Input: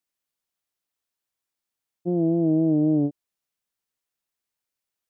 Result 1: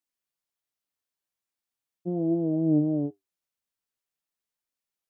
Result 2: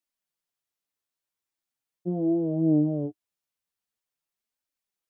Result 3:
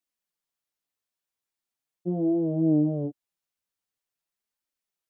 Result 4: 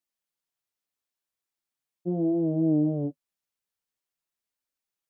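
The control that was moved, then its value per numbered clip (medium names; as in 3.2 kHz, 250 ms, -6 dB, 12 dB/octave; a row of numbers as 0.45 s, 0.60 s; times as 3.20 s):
flange, regen: +64%, +18%, -6%, -33%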